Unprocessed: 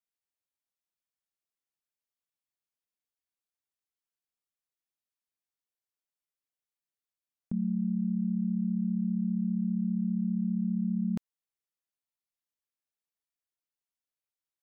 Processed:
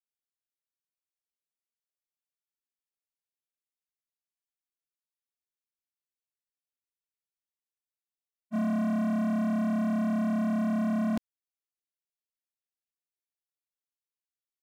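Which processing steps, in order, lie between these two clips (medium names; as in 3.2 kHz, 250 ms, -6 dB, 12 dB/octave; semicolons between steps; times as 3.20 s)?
static phaser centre 380 Hz, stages 4; waveshaping leveller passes 5; spectral freeze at 5.94 s, 2.60 s; trim +2.5 dB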